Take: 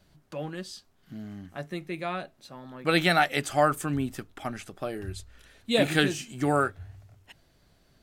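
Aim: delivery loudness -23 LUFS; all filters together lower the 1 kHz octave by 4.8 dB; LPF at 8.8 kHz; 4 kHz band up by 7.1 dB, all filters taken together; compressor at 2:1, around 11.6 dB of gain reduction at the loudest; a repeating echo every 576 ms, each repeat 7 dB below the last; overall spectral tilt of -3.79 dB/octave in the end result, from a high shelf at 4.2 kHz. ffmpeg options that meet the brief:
-af "lowpass=8800,equalizer=f=1000:t=o:g=-8.5,equalizer=f=4000:t=o:g=6,highshelf=f=4200:g=6,acompressor=threshold=0.0126:ratio=2,aecho=1:1:576|1152|1728|2304|2880:0.447|0.201|0.0905|0.0407|0.0183,volume=4.73"

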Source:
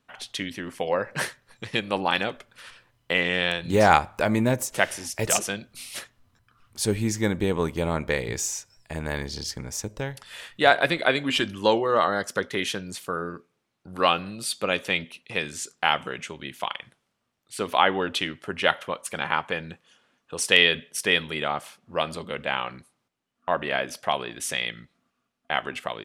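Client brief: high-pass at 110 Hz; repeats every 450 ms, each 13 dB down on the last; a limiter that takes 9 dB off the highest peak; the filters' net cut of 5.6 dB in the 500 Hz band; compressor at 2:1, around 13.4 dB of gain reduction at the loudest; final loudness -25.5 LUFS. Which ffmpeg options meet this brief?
-af "highpass=110,equalizer=f=500:t=o:g=-7,acompressor=threshold=0.0126:ratio=2,alimiter=limit=0.0708:level=0:latency=1,aecho=1:1:450|900|1350:0.224|0.0493|0.0108,volume=4.22"

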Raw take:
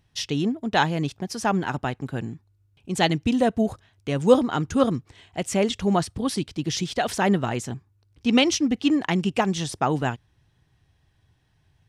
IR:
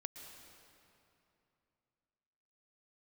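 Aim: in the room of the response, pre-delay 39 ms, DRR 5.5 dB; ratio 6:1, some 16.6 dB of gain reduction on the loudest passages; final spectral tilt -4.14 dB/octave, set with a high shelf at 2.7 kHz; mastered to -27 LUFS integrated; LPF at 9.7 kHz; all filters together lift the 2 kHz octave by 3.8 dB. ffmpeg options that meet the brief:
-filter_complex "[0:a]lowpass=9700,equalizer=f=2000:t=o:g=3,highshelf=f=2700:g=4.5,acompressor=threshold=0.0398:ratio=6,asplit=2[s0][s1];[1:a]atrim=start_sample=2205,adelay=39[s2];[s1][s2]afir=irnorm=-1:irlink=0,volume=0.794[s3];[s0][s3]amix=inputs=2:normalize=0,volume=1.68"

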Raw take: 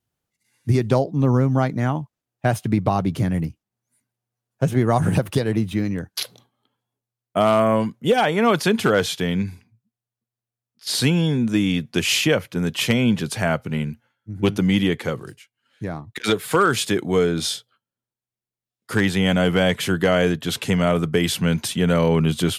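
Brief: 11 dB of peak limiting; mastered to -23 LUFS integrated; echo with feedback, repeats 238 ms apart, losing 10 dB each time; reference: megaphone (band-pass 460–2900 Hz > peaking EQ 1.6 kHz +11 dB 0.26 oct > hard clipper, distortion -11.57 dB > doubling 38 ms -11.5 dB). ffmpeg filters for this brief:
-filter_complex "[0:a]alimiter=limit=0.133:level=0:latency=1,highpass=460,lowpass=2900,equalizer=f=1600:t=o:w=0.26:g=11,aecho=1:1:238|476|714|952:0.316|0.101|0.0324|0.0104,asoftclip=type=hard:threshold=0.0531,asplit=2[s0][s1];[s1]adelay=38,volume=0.266[s2];[s0][s2]amix=inputs=2:normalize=0,volume=2.82"

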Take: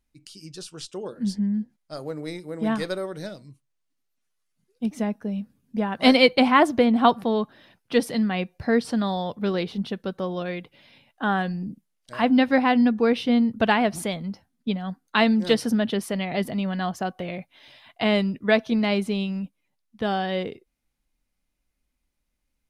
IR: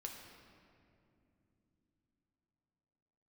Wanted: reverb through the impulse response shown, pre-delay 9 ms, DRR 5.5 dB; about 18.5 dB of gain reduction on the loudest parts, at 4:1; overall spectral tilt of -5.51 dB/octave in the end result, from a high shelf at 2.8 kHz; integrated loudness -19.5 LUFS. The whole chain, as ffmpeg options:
-filter_complex "[0:a]highshelf=f=2800:g=-9,acompressor=threshold=0.0158:ratio=4,asplit=2[s0][s1];[1:a]atrim=start_sample=2205,adelay=9[s2];[s1][s2]afir=irnorm=-1:irlink=0,volume=0.75[s3];[s0][s3]amix=inputs=2:normalize=0,volume=7.08"

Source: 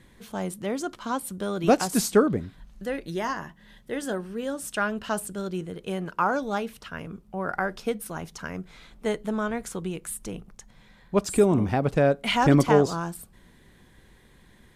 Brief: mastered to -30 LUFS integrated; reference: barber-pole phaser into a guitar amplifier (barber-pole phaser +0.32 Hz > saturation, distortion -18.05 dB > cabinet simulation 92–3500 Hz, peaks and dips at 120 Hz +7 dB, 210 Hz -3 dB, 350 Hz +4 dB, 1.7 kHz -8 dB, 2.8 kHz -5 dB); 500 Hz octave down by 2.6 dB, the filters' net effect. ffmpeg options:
-filter_complex "[0:a]equalizer=f=500:t=o:g=-4.5,asplit=2[s0][s1];[s1]afreqshift=0.32[s2];[s0][s2]amix=inputs=2:normalize=1,asoftclip=threshold=0.141,highpass=92,equalizer=f=120:t=q:w=4:g=7,equalizer=f=210:t=q:w=4:g=-3,equalizer=f=350:t=q:w=4:g=4,equalizer=f=1700:t=q:w=4:g=-8,equalizer=f=2800:t=q:w=4:g=-5,lowpass=f=3500:w=0.5412,lowpass=f=3500:w=1.3066,volume=1.41"

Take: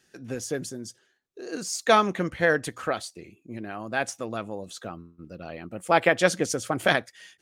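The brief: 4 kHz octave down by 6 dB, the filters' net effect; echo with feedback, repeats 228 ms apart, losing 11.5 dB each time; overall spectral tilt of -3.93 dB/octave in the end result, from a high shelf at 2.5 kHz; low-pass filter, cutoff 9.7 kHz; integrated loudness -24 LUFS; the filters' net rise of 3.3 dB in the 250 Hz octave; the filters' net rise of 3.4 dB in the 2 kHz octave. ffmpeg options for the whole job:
-af "lowpass=9700,equalizer=f=250:t=o:g=4.5,equalizer=f=2000:t=o:g=8,highshelf=f=2500:g=-7,equalizer=f=4000:t=o:g=-4.5,aecho=1:1:228|456|684:0.266|0.0718|0.0194"

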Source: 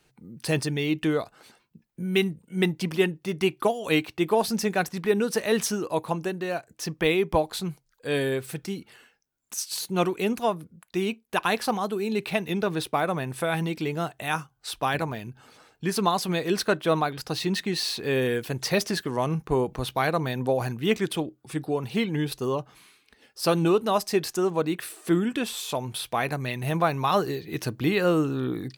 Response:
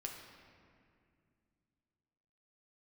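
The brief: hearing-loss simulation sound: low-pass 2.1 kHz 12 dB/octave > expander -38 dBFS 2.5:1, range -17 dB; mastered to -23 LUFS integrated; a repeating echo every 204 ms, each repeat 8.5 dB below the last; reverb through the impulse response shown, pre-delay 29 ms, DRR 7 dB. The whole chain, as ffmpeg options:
-filter_complex "[0:a]aecho=1:1:204|408|612|816:0.376|0.143|0.0543|0.0206,asplit=2[s0][s1];[1:a]atrim=start_sample=2205,adelay=29[s2];[s1][s2]afir=irnorm=-1:irlink=0,volume=0.562[s3];[s0][s3]amix=inputs=2:normalize=0,lowpass=2100,agate=range=0.141:threshold=0.0126:ratio=2.5,volume=1.41"

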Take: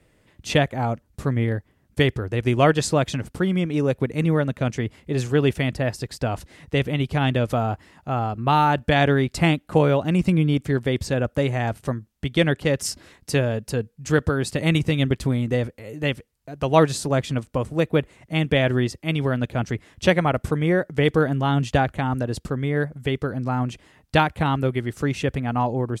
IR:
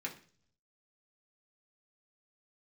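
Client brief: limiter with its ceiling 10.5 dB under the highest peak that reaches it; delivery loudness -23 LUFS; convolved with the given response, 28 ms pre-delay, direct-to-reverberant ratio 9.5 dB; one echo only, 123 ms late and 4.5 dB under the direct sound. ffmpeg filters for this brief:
-filter_complex "[0:a]alimiter=limit=0.211:level=0:latency=1,aecho=1:1:123:0.596,asplit=2[s0][s1];[1:a]atrim=start_sample=2205,adelay=28[s2];[s1][s2]afir=irnorm=-1:irlink=0,volume=0.299[s3];[s0][s3]amix=inputs=2:normalize=0,volume=1.06"

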